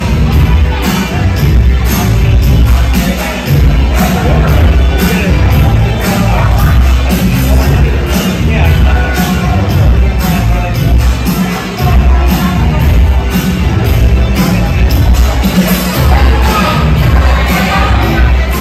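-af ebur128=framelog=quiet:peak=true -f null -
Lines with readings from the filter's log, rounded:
Integrated loudness:
  I:          -9.7 LUFS
  Threshold: -19.7 LUFS
Loudness range:
  LRA:         1.2 LU
  Threshold: -29.7 LUFS
  LRA low:   -10.3 LUFS
  LRA high:   -9.1 LUFS
True peak:
  Peak:       -1.3 dBFS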